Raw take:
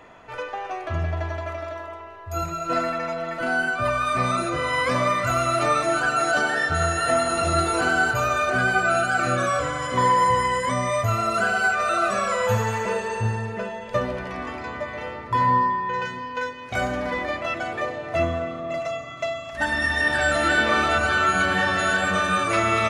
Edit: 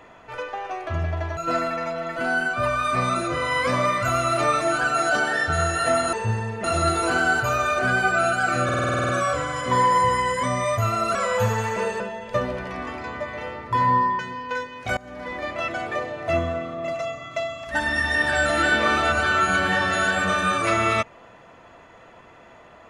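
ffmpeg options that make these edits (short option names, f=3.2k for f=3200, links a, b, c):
-filter_complex "[0:a]asplit=17[a][b][c][d][e][f][g][h][i][j][k][l][m][n][o][p][q];[a]atrim=end=1.372[r];[b]atrim=start=2.588:end=7.352[s];[c]atrim=start=13.088:end=13.602[t];[d]atrim=start=7.348:end=9.402[u];[e]atrim=start=9.348:end=9.402[v];[f]atrim=start=9.348:end=9.402[w];[g]atrim=start=9.348:end=9.402[x];[h]atrim=start=9.348:end=9.402[y];[i]atrim=start=9.348:end=9.402[z];[j]atrim=start=9.348:end=9.402[aa];[k]atrim=start=9.348:end=9.402[ab];[l]atrim=start=9.348:end=9.402[ac];[m]atrim=start=9.348:end=11.412[ad];[n]atrim=start=12.238:end=13.092[ae];[o]atrim=start=13.598:end=15.792[af];[p]atrim=start=16.048:end=16.83,asetpts=PTS-STARTPTS,afade=t=out:st=0.778:d=0.004:c=hsin:silence=0.0630957[ag];[q]atrim=start=16.83,asetpts=PTS-STARTPTS,afade=t=in:d=0.65:silence=0.0630957[ah];[r][s]acrossfade=d=0.004:c1=hsin:c2=hsin[ai];[ai][t]acrossfade=d=0.004:c1=hsin:c2=hsin[aj];[aj][u]acrossfade=d=0.004:c1=hsin:c2=hsin[ak];[ak][v]acrossfade=d=0.004:c1=hsin:c2=hsin[al];[al][w]acrossfade=d=0.004:c1=hsin:c2=hsin[am];[am][x]acrossfade=d=0.004:c1=hsin:c2=hsin[an];[an][y]acrossfade=d=0.004:c1=hsin:c2=hsin[ao];[ao][z]acrossfade=d=0.004:c1=hsin:c2=hsin[ap];[ap][aa]acrossfade=d=0.004:c1=hsin:c2=hsin[aq];[aq][ab]acrossfade=d=0.004:c1=hsin:c2=hsin[ar];[ar][ac]acrossfade=d=0.004:c1=hsin:c2=hsin[as];[as][ad]acrossfade=d=0.004:c1=hsin:c2=hsin[at];[at][ae]acrossfade=d=0.004:c1=hsin:c2=hsin[au];[au][af]acrossfade=d=0.004:c1=hsin:c2=hsin[av];[ag][ah]concat=n=2:v=0:a=1[aw];[av][aw]acrossfade=d=0.004:c1=hsin:c2=hsin"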